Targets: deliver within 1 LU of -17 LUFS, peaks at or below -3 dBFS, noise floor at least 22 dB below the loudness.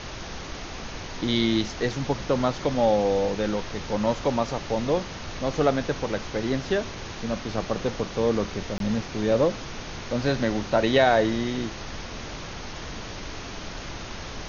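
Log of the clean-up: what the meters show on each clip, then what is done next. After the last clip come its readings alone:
dropouts 1; longest dropout 22 ms; noise floor -37 dBFS; noise floor target -49 dBFS; loudness -27.0 LUFS; peak level -7.0 dBFS; loudness target -17.0 LUFS
-> interpolate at 8.78 s, 22 ms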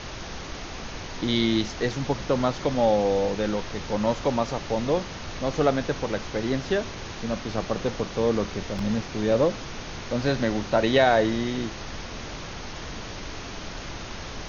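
dropouts 0; noise floor -37 dBFS; noise floor target -49 dBFS
-> noise print and reduce 12 dB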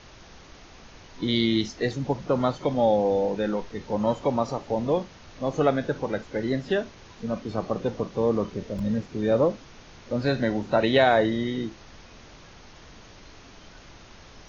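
noise floor -49 dBFS; loudness -26.0 LUFS; peak level -7.0 dBFS; loudness target -17.0 LUFS
-> trim +9 dB; peak limiter -3 dBFS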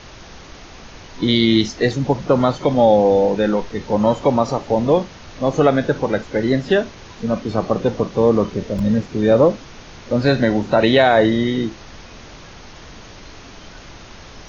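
loudness -17.5 LUFS; peak level -3.0 dBFS; noise floor -40 dBFS

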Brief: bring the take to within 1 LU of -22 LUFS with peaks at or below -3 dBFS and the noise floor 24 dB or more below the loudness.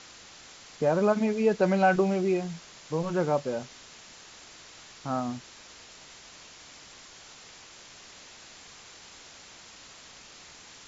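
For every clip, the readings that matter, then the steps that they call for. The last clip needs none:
noise floor -50 dBFS; noise floor target -51 dBFS; loudness -27.0 LUFS; peak level -11.0 dBFS; loudness target -22.0 LUFS
-> noise reduction 6 dB, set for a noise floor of -50 dBFS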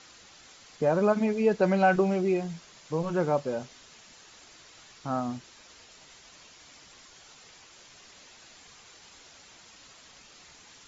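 noise floor -54 dBFS; loudness -27.0 LUFS; peak level -11.0 dBFS; loudness target -22.0 LUFS
-> trim +5 dB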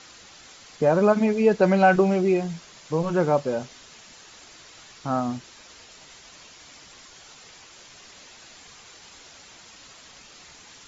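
loudness -22.0 LUFS; peak level -6.0 dBFS; noise floor -49 dBFS

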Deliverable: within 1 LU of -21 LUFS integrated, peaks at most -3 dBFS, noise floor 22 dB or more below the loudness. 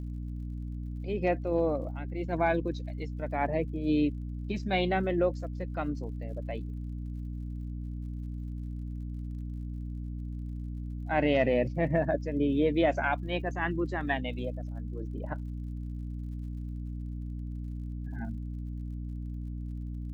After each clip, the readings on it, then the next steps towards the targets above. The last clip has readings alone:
tick rate 57 per s; hum 60 Hz; highest harmonic 300 Hz; hum level -34 dBFS; loudness -33.0 LUFS; peak level -14.5 dBFS; loudness target -21.0 LUFS
-> de-click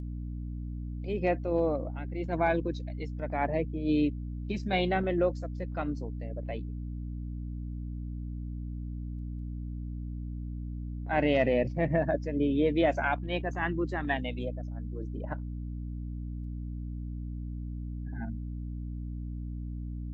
tick rate 0.35 per s; hum 60 Hz; highest harmonic 300 Hz; hum level -34 dBFS
-> de-hum 60 Hz, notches 5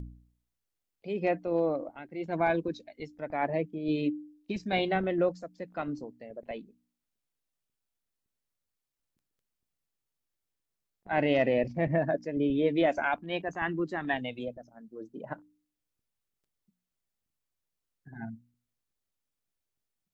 hum not found; loudness -30.5 LUFS; peak level -15.0 dBFS; loudness target -21.0 LUFS
-> trim +9.5 dB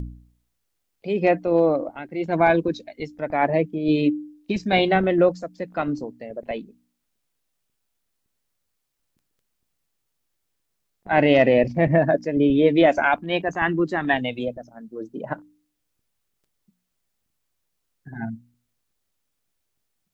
loudness -21.0 LUFS; peak level -5.5 dBFS; noise floor -76 dBFS

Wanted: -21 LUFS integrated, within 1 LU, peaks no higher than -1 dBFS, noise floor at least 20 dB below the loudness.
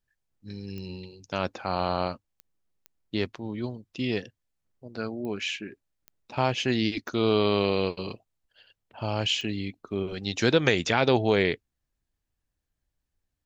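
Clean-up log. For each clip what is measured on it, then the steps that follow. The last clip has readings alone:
clicks found 7; loudness -27.5 LUFS; peak level -6.0 dBFS; loudness target -21.0 LUFS
-> de-click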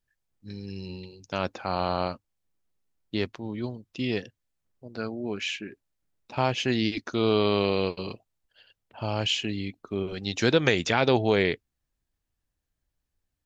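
clicks found 0; loudness -27.5 LUFS; peak level -6.0 dBFS; loudness target -21.0 LUFS
-> trim +6.5 dB; peak limiter -1 dBFS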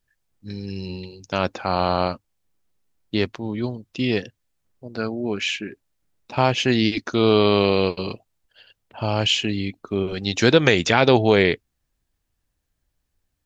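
loudness -21.0 LUFS; peak level -1.0 dBFS; noise floor -76 dBFS

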